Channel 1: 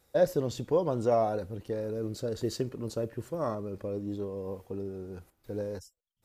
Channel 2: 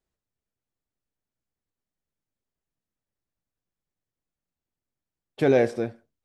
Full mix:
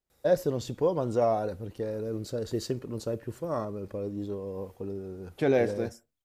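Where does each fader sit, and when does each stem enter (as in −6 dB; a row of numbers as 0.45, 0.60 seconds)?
+0.5, −4.5 decibels; 0.10, 0.00 seconds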